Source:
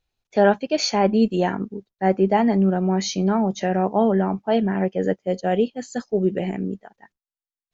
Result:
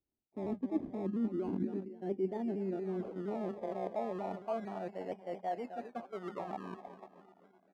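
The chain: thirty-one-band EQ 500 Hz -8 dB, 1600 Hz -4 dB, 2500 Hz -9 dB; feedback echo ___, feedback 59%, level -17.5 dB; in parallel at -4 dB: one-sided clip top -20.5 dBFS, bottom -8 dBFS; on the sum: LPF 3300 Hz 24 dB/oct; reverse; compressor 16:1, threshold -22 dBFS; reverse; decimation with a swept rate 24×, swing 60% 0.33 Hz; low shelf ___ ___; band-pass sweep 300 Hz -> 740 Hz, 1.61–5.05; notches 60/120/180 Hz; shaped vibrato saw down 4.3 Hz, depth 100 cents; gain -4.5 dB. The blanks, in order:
0.259 s, 110 Hz, +9.5 dB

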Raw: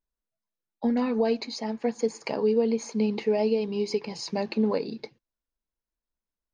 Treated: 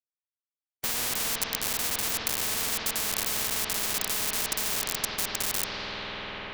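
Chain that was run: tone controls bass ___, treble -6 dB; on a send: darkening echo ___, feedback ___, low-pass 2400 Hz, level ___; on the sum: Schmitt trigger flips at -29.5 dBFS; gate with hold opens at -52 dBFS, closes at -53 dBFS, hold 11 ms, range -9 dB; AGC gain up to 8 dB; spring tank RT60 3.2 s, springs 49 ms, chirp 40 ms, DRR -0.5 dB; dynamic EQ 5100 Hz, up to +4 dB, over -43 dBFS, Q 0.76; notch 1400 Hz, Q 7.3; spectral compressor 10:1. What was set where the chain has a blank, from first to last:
-9 dB, 0.829 s, 24%, -4.5 dB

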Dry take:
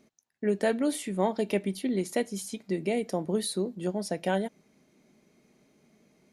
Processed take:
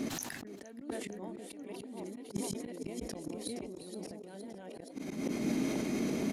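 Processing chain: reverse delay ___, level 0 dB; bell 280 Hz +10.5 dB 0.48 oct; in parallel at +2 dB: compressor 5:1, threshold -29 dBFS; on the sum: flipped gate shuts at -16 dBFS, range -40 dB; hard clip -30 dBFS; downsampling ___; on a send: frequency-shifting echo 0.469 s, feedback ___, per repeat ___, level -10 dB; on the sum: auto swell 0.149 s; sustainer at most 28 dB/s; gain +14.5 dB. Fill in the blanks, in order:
0.407 s, 32000 Hz, 55%, +53 Hz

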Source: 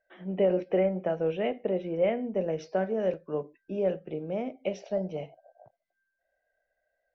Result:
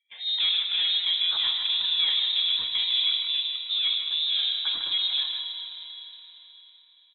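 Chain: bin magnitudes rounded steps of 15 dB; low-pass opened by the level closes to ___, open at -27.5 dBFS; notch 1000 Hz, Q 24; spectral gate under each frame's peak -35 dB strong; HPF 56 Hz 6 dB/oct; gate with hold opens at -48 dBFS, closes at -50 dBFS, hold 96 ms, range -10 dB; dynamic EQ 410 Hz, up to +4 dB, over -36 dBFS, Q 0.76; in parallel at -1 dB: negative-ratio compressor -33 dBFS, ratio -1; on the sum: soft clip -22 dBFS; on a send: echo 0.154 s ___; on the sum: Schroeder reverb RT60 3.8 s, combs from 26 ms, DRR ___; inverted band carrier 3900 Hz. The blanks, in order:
2000 Hz, -7 dB, 5.5 dB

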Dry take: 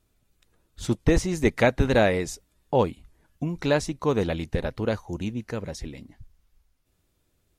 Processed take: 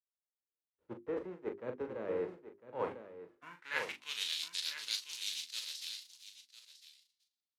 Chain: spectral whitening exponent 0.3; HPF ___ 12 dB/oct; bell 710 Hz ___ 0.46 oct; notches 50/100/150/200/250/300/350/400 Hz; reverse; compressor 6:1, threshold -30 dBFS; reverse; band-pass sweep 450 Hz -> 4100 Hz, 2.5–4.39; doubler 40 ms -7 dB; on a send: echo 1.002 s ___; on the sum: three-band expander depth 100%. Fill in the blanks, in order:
51 Hz, -8.5 dB, -7 dB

